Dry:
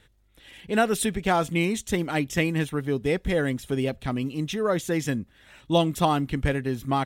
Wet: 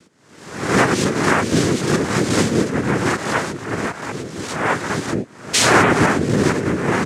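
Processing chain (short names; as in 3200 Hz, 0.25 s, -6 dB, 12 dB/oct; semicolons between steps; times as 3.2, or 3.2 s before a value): spectral swells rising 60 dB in 0.77 s; 3.08–5.12 tone controls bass -15 dB, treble -9 dB; 5.53–5.93 painted sound fall 350–3700 Hz -19 dBFS; low shelf 150 Hz +12 dB; modulation noise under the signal 26 dB; noise vocoder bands 3; gain +3 dB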